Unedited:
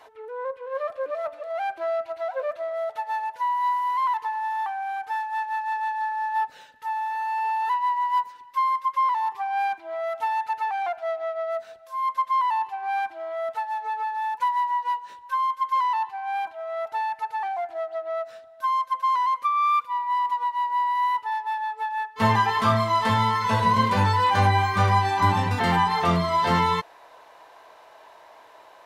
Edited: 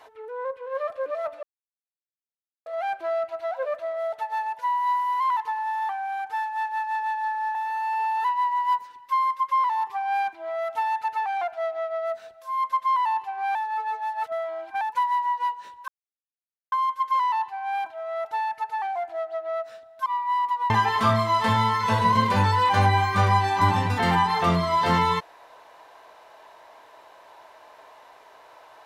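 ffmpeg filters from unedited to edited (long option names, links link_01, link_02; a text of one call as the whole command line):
ffmpeg -i in.wav -filter_complex "[0:a]asplit=8[link_01][link_02][link_03][link_04][link_05][link_06][link_07][link_08];[link_01]atrim=end=1.43,asetpts=PTS-STARTPTS,afade=type=out:start_time=1.426:duration=0.004:curve=hsin,apad=pad_dur=1.23[link_09];[link_02]atrim=start=1.43:end=6.322,asetpts=PTS-STARTPTS,afade=type=in:duration=0.004:curve=hsin[link_10];[link_03]atrim=start=6.998:end=13.002[link_11];[link_04]atrim=start=12.998:end=14.262,asetpts=PTS-STARTPTS,areverse[link_12];[link_05]atrim=start=14.258:end=15.33,asetpts=PTS-STARTPTS,afade=type=out:start_time=1.068:duration=0.004:curve=hsin,apad=pad_dur=0.84[link_13];[link_06]atrim=start=15.33:end=18.672,asetpts=PTS-STARTPTS,afade=type=in:duration=0.004:curve=hsin[link_14];[link_07]atrim=start=19.868:end=20.512[link_15];[link_08]atrim=start=22.308[link_16];[link_09][link_10]concat=n=2:v=0:a=1[link_17];[link_17][link_11]acrossfade=duration=0.004:curve1=hsin:curve2=hsin[link_18];[link_18][link_12]acrossfade=duration=0.004:curve1=hsin:curve2=hsin[link_19];[link_13][link_14]concat=n=2:v=0:a=1[link_20];[link_19][link_20]acrossfade=duration=0.004:curve1=hsin:curve2=hsin[link_21];[link_21][link_15]acrossfade=duration=0.004:curve1=hsin:curve2=hsin[link_22];[link_22][link_16]acrossfade=duration=0.004:curve1=hsin:curve2=hsin" out.wav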